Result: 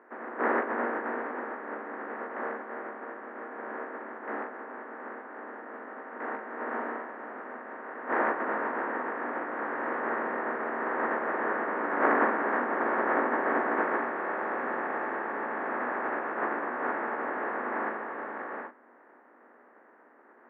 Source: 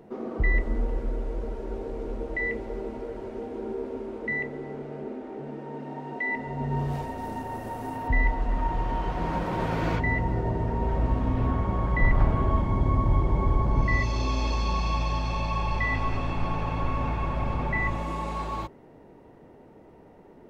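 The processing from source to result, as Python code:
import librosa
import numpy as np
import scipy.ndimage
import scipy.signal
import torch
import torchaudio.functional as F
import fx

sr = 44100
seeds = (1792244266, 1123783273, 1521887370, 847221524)

y = fx.spec_flatten(x, sr, power=0.13)
y = scipy.signal.sosfilt(scipy.signal.cheby1(4, 1.0, [240.0, 1800.0], 'bandpass', fs=sr, output='sos'), y)
y = fx.air_absorb(y, sr, metres=280.0)
y = fx.room_early_taps(y, sr, ms=(17, 41), db=(-5.0, -6.0))
y = y * 10.0 ** (1.0 / 20.0)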